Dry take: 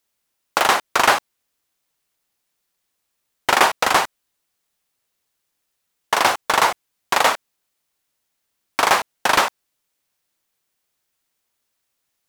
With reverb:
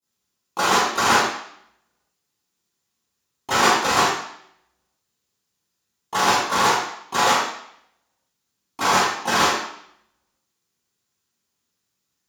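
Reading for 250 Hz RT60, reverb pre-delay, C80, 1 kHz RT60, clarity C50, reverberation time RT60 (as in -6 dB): 0.70 s, 17 ms, 2.5 dB, 0.70 s, -1.5 dB, 0.70 s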